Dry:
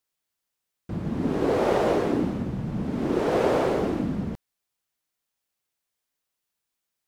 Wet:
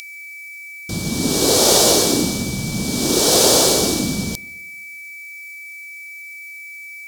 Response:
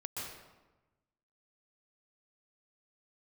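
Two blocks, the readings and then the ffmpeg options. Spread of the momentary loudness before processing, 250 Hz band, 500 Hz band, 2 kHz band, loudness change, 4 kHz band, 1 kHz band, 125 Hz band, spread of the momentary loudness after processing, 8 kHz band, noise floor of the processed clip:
10 LU, +5.0 dB, +5.0 dB, +11.5 dB, +10.5 dB, +25.5 dB, +5.0 dB, +5.0 dB, 21 LU, +34.0 dB, -36 dBFS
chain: -filter_complex "[0:a]aeval=exprs='val(0)+0.0178*sin(2*PI*2300*n/s)':c=same,aexciter=amount=9.4:drive=10:freq=3600,asplit=2[s0][s1];[1:a]atrim=start_sample=2205,asetrate=42336,aresample=44100[s2];[s1][s2]afir=irnorm=-1:irlink=0,volume=0.0668[s3];[s0][s3]amix=inputs=2:normalize=0,volume=1.68"

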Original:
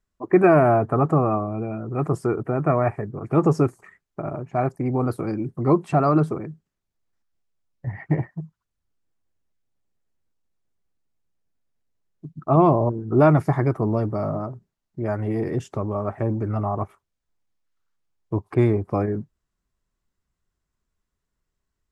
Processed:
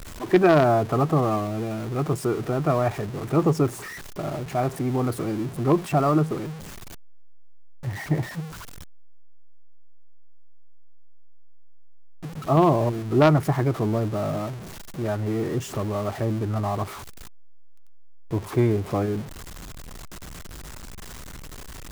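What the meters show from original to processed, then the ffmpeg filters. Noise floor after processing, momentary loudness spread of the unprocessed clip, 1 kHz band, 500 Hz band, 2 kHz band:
-39 dBFS, 15 LU, -1.5 dB, -1.5 dB, +1.0 dB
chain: -af "aeval=exprs='val(0)+0.5*0.0355*sgn(val(0))':c=same,aeval=exprs='0.596*(cos(1*acos(clip(val(0)/0.596,-1,1)))-cos(1*PI/2))+0.15*(cos(3*acos(clip(val(0)/0.596,-1,1)))-cos(3*PI/2))+0.075*(cos(5*acos(clip(val(0)/0.596,-1,1)))-cos(5*PI/2))+0.0211*(cos(7*acos(clip(val(0)/0.596,-1,1)))-cos(7*PI/2))':c=same,volume=1.12"

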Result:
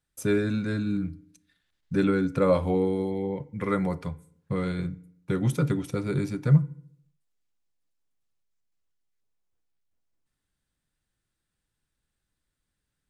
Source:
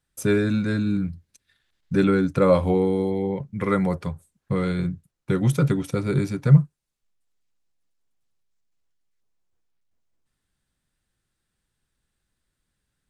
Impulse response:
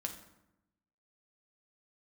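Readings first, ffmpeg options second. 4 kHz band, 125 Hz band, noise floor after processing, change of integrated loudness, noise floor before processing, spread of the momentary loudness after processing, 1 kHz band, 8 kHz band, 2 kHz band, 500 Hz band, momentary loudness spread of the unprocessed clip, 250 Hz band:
-4.5 dB, -5.0 dB, -83 dBFS, -4.5 dB, -80 dBFS, 12 LU, -4.5 dB, -4.5 dB, -4.0 dB, -4.0 dB, 12 LU, -4.0 dB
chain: -filter_complex "[0:a]asplit=2[s0][s1];[1:a]atrim=start_sample=2205,asetrate=66150,aresample=44100[s2];[s1][s2]afir=irnorm=-1:irlink=0,volume=0.531[s3];[s0][s3]amix=inputs=2:normalize=0,volume=0.473"

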